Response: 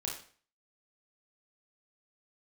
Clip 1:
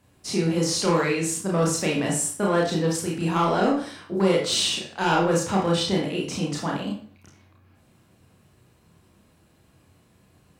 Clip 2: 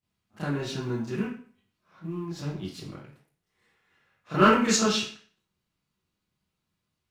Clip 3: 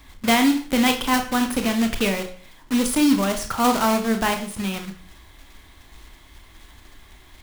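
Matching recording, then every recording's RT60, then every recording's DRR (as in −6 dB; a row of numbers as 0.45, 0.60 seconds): 1; 0.45, 0.45, 0.45 seconds; −2.5, −11.0, 5.5 decibels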